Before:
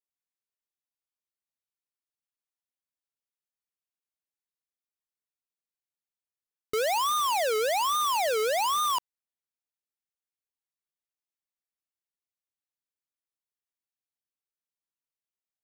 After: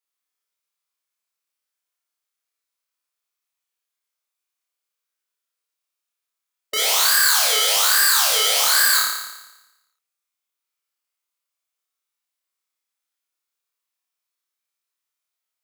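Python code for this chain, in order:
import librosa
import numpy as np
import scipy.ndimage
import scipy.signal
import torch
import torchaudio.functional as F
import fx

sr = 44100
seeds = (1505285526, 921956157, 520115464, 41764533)

y = scipy.signal.sosfilt(scipy.signal.butter(2, 490.0, 'highpass', fs=sr, output='sos'), x)
y = fx.formant_shift(y, sr, semitones=5)
y = fx.room_flutter(y, sr, wall_m=4.9, rt60_s=1.0)
y = y * librosa.db_to_amplitude(6.0)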